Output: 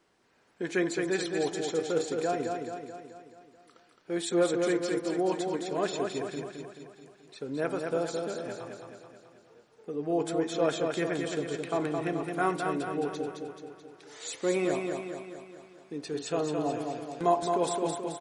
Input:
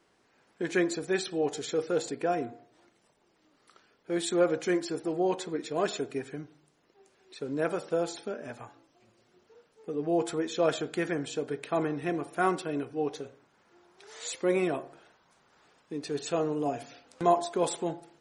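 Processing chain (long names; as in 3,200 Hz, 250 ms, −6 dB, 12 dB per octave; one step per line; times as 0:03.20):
repeating echo 216 ms, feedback 55%, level −4.5 dB
level −1.5 dB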